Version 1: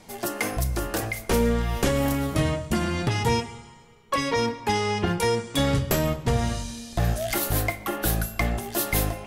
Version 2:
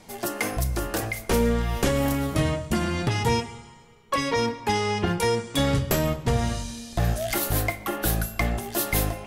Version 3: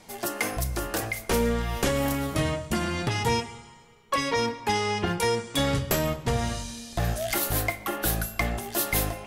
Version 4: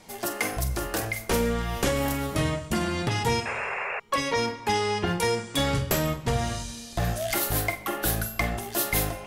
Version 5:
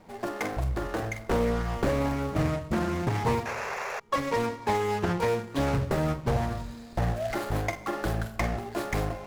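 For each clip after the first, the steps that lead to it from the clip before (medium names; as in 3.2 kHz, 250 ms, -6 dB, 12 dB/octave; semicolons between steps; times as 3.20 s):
no audible change
bass shelf 460 Hz -4 dB
flutter echo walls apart 7.8 m, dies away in 0.23 s; painted sound noise, 3.45–4.00 s, 380–2800 Hz -31 dBFS
median filter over 15 samples; loudspeaker Doppler distortion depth 0.42 ms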